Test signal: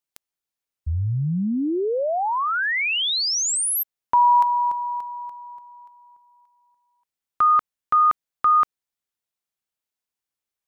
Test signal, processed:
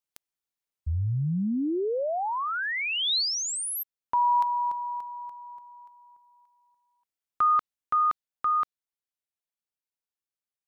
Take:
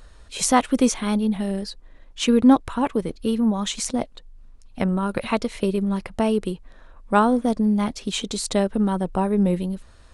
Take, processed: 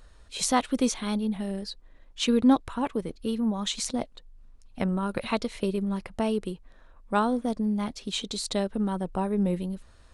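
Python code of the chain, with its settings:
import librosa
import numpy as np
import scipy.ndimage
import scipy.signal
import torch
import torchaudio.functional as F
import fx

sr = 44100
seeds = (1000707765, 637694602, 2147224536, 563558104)

y = fx.dynamic_eq(x, sr, hz=4000.0, q=2.1, threshold_db=-43.0, ratio=4.0, max_db=6)
y = fx.rider(y, sr, range_db=4, speed_s=2.0)
y = y * 10.0 ** (-7.5 / 20.0)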